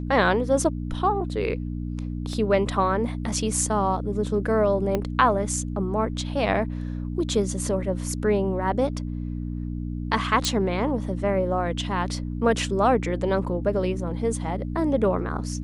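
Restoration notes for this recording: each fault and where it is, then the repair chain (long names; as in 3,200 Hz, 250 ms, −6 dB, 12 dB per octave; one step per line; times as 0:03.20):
mains hum 60 Hz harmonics 5 −30 dBFS
0:02.33: drop-out 2.1 ms
0:04.95: click −12 dBFS
0:10.45: click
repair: click removal
hum removal 60 Hz, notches 5
repair the gap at 0:02.33, 2.1 ms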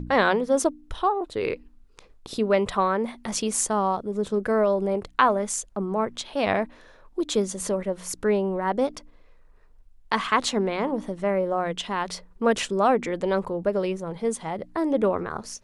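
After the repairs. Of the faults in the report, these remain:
0:04.95: click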